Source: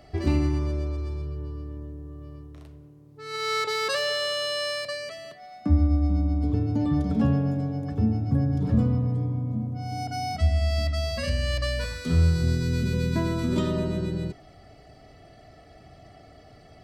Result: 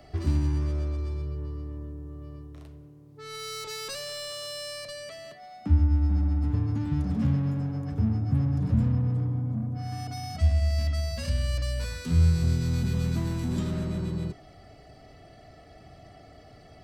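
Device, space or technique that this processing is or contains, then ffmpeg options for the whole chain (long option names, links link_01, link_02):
one-band saturation: -filter_complex "[0:a]acrossover=split=220|5000[link_01][link_02][link_03];[link_02]asoftclip=type=tanh:threshold=-39dB[link_04];[link_01][link_04][link_03]amix=inputs=3:normalize=0"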